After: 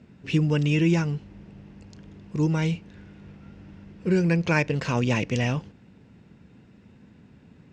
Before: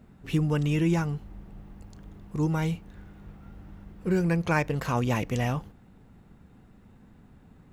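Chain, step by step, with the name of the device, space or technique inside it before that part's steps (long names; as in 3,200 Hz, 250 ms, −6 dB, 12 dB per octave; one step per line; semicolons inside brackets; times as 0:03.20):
car door speaker (loudspeaker in its box 91–7,200 Hz, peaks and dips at 770 Hz −7 dB, 1,200 Hz −7 dB, 2,600 Hz +5 dB, 5,100 Hz +4 dB)
level +3.5 dB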